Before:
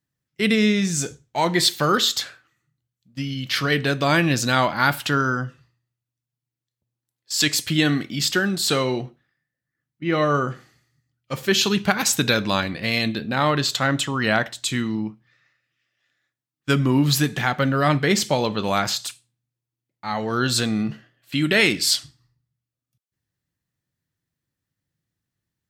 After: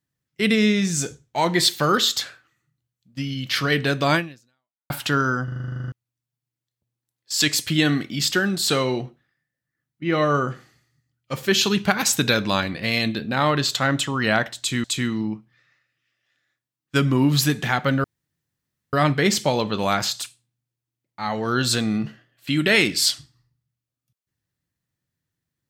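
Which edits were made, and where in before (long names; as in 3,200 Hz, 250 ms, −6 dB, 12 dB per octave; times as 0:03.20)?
0:04.15–0:04.90: fade out exponential
0:05.44: stutter in place 0.04 s, 12 plays
0:14.58–0:14.84: repeat, 2 plays
0:17.78: splice in room tone 0.89 s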